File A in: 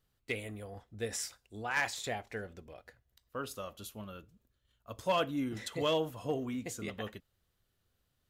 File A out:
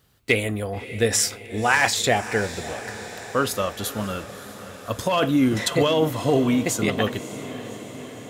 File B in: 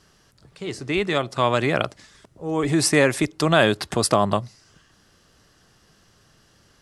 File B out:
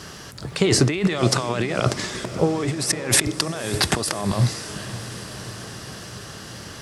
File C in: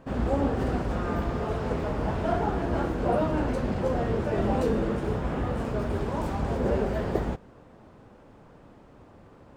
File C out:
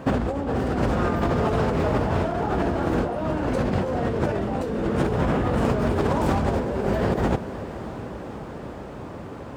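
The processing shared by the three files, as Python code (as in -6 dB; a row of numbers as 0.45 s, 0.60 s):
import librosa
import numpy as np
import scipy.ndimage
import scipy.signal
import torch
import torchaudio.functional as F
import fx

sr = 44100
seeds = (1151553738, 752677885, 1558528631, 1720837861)

y = scipy.signal.sosfilt(scipy.signal.butter(2, 62.0, 'highpass', fs=sr, output='sos'), x)
y = fx.over_compress(y, sr, threshold_db=-33.0, ratio=-1.0)
y = fx.echo_diffused(y, sr, ms=584, feedback_pct=67, wet_db=-14)
y = y * 10.0 ** (-24 / 20.0) / np.sqrt(np.mean(np.square(y)))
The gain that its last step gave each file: +16.0 dB, +9.5 dB, +9.5 dB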